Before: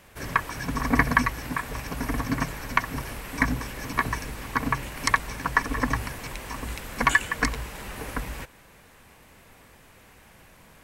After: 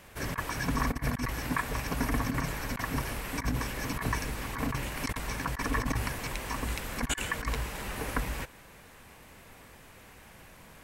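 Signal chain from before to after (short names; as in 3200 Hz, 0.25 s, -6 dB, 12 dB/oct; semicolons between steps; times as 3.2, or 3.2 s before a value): negative-ratio compressor -27 dBFS, ratio -0.5; gain -2 dB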